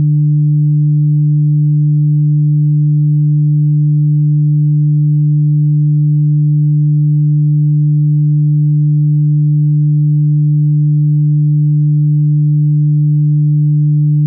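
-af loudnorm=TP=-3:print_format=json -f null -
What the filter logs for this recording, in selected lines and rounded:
"input_i" : "-11.2",
"input_tp" : "-6.1",
"input_lra" : "0.1",
"input_thresh" : "-21.2",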